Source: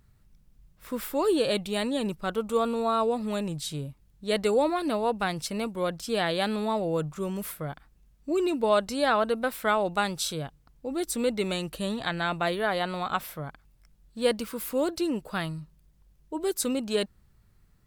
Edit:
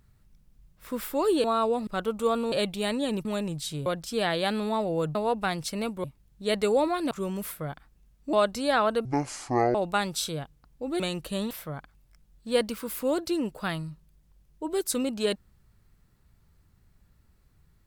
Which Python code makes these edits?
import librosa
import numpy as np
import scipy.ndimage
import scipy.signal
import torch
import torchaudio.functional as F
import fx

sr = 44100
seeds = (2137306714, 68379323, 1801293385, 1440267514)

y = fx.edit(x, sr, fx.swap(start_s=1.44, length_s=0.73, other_s=2.82, other_length_s=0.43),
    fx.swap(start_s=3.86, length_s=1.07, other_s=5.82, other_length_s=1.29),
    fx.cut(start_s=8.33, length_s=0.34),
    fx.speed_span(start_s=9.39, length_s=0.39, speed=0.56),
    fx.cut(start_s=11.03, length_s=0.45),
    fx.cut(start_s=11.99, length_s=1.22), tone=tone)